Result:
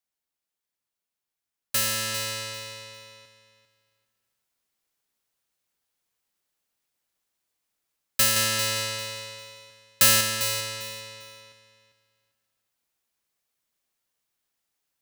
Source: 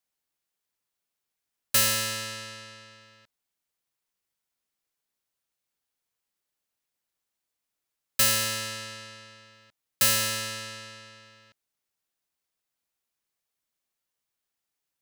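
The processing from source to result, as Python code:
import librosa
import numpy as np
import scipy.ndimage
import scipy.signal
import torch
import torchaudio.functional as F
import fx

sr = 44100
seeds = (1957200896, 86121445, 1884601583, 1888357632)

y = fx.rider(x, sr, range_db=4, speed_s=0.5)
y = fx.leveller(y, sr, passes=1, at=(8.36, 10.21))
y = fx.echo_feedback(y, sr, ms=398, feedback_pct=23, wet_db=-11.5)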